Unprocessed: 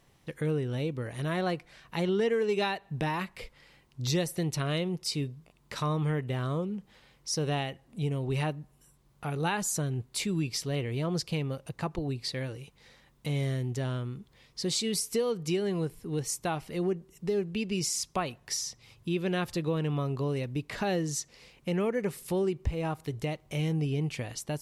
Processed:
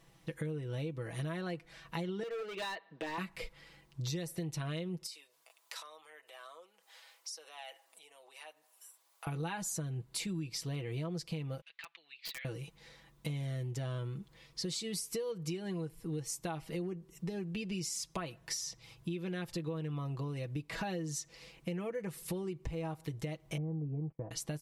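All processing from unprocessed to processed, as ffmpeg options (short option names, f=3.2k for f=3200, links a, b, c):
-filter_complex "[0:a]asettb=1/sr,asplit=3[a][b][c];[a]atrim=end=2.234[d];[b]atrim=start=2.23:end=3.18,asetpts=PTS-STARTPTS,afade=t=in:d=0.004:c=qsin,afade=t=out:st=0.946:d=0.004:c=qsin,highpass=f=300:w=0.5412,highpass=f=300:w=1.3066,equalizer=f=360:t=q:w=4:g=-7,equalizer=f=790:t=q:w=4:g=-8,equalizer=f=2.6k:t=q:w=4:g=-4,lowpass=f=4.2k:w=0.5412,lowpass=f=4.2k:w=1.3066,volume=32dB,asoftclip=hard,volume=-32dB[e];[c]atrim=start=3.176[f];[d][e]acrossfade=d=0.004:c1=hsin:c2=qsin[g];[g][f]acrossfade=d=0.004:c1=qsin:c2=hsin,asettb=1/sr,asplit=3[h][i][j];[h]atrim=end=5.064[k];[i]atrim=start=5.06:end=9.27,asetpts=PTS-STARTPTS,afade=t=in:d=0.004:c=qsin,afade=t=out:st=4.206:d=0.004:c=qsin,highshelf=f=5k:g=9,acompressor=threshold=-40dB:ratio=16:attack=3.2:release=140:knee=1:detection=peak,highpass=f=610:w=0.5412,highpass=f=610:w=1.3066[l];[j]atrim=start=9.266[m];[k][l]acrossfade=d=0.004:c1=hsin:c2=qsin[n];[n][m]acrossfade=d=0.004:c1=qsin:c2=hsin,asettb=1/sr,asplit=3[o][p][q];[o]atrim=end=11.614[r];[p]atrim=start=11.61:end=12.45,asetpts=PTS-STARTPTS,afade=t=in:d=0.004:c=qsin,afade=t=out:st=0.836:d=0.004:c=qsin,asuperpass=centerf=2700:order=4:qfactor=1.4,aeval=exprs='(mod(47.3*val(0)+1,2)-1)/47.3':c=same[s];[q]atrim=start=12.446[t];[r][s]acrossfade=d=0.004:c1=hsin:c2=qsin[u];[u][t]acrossfade=d=0.004:c1=qsin:c2=hsin,asettb=1/sr,asplit=3[v][w][x];[v]atrim=end=23.574[y];[w]atrim=start=23.57:end=24.31,asetpts=PTS-STARTPTS,afade=t=in:d=0.004:c=qsin,afade=t=out:st=0.736:d=0.004:c=qsin,lowpass=f=1k:w=0.5412,lowpass=f=1k:w=1.3066,agate=range=-26dB:threshold=-40dB:ratio=16:release=100:detection=peak[z];[x]atrim=start=24.306[aa];[y][z]acrossfade=d=0.004:c1=hsin:c2=qsin[ab];[ab][aa]acrossfade=d=0.004:c1=qsin:c2=hsin,aecho=1:1:6.1:0.65,acompressor=threshold=-34dB:ratio=6,volume=-1.5dB"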